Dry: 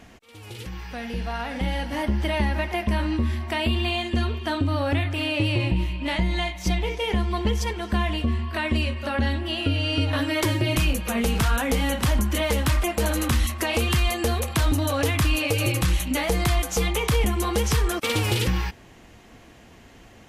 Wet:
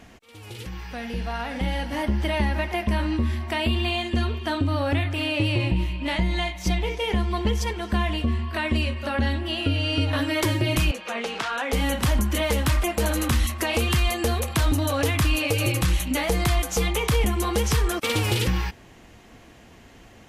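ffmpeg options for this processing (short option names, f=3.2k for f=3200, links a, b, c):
-filter_complex "[0:a]asettb=1/sr,asplit=3[a][b][c];[a]atrim=end=10.914[d];[b]atrim=start=10.91:end=11.73,asetpts=PTS-STARTPTS,afade=t=in:d=0.004:c=qsin,afade=t=out:st=0.816:d=0.004:c=qsin,highpass=450,lowpass=4.9k[e];[c]atrim=start=11.726[f];[d][e]acrossfade=d=0.004:c1=hsin:c2=qsin[g];[g][f]acrossfade=d=0.004:c1=qsin:c2=hsin"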